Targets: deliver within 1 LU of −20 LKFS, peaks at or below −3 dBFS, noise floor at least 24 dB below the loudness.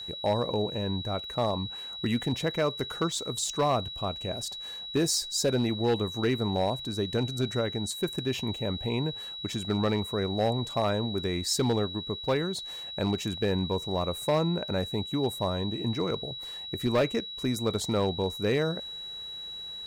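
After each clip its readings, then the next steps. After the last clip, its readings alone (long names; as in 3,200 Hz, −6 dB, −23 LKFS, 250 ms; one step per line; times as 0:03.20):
share of clipped samples 0.6%; peaks flattened at −19.0 dBFS; interfering tone 3,900 Hz; level of the tone −37 dBFS; integrated loudness −29.5 LKFS; sample peak −19.0 dBFS; target loudness −20.0 LKFS
→ clipped peaks rebuilt −19 dBFS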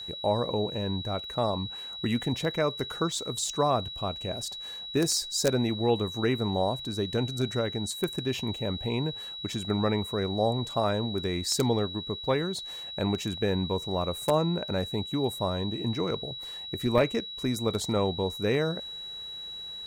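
share of clipped samples 0.0%; interfering tone 3,900 Hz; level of the tone −37 dBFS
→ notch filter 3,900 Hz, Q 30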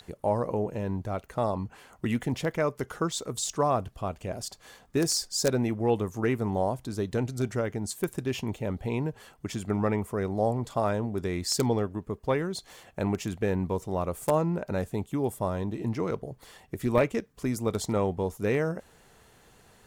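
interfering tone none found; integrated loudness −30.0 LKFS; sample peak −10.0 dBFS; target loudness −20.0 LKFS
→ level +10 dB
brickwall limiter −3 dBFS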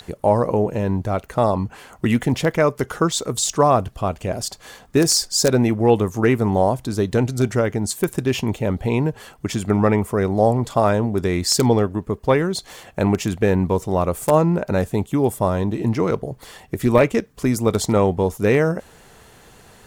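integrated loudness −20.0 LKFS; sample peak −3.0 dBFS; background noise floor −48 dBFS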